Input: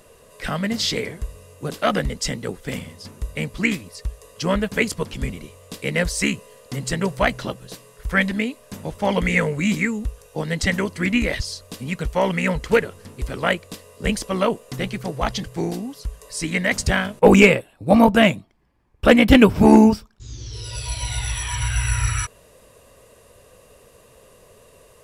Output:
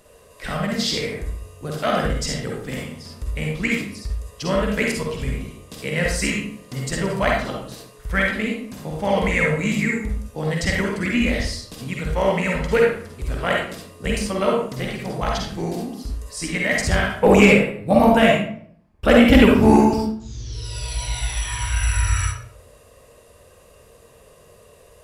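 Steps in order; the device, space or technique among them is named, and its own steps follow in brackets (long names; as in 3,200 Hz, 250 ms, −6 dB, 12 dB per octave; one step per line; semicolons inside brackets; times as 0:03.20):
bathroom (convolution reverb RT60 0.60 s, pre-delay 43 ms, DRR −1.5 dB)
level −3.5 dB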